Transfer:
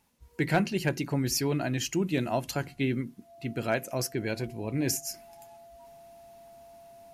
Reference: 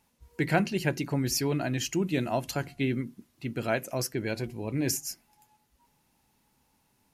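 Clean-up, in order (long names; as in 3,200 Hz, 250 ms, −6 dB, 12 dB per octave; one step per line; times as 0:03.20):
clipped peaks rebuilt −15.5 dBFS
notch filter 680 Hz, Q 30
level 0 dB, from 0:05.14 −8 dB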